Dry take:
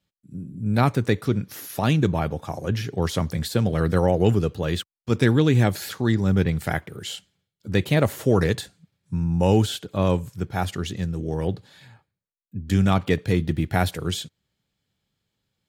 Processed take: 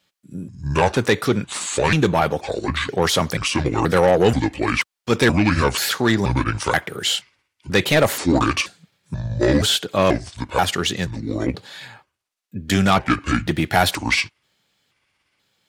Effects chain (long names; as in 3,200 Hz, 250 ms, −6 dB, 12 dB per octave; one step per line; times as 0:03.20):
pitch shifter gated in a rhythm −7 semitones, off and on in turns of 481 ms
mid-hump overdrive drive 20 dB, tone 7,600 Hz, clips at −4.5 dBFS